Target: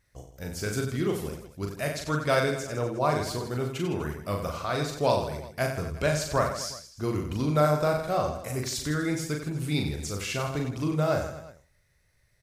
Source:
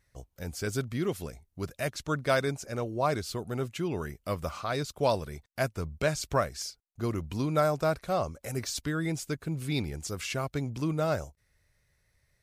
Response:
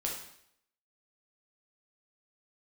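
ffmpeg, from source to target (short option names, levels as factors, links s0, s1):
-filter_complex "[0:a]aecho=1:1:40|92|159.6|247.5|361.7:0.631|0.398|0.251|0.158|0.1,asplit=2[s0][s1];[1:a]atrim=start_sample=2205[s2];[s1][s2]afir=irnorm=-1:irlink=0,volume=0.0891[s3];[s0][s3]amix=inputs=2:normalize=0"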